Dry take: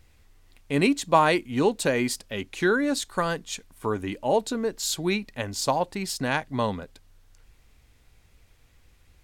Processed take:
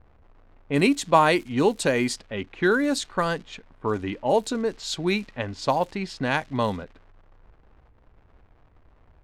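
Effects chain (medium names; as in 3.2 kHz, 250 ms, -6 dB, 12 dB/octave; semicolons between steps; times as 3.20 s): crackle 260 per s -38 dBFS; level-controlled noise filter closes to 940 Hz, open at -20 dBFS; trim +1.5 dB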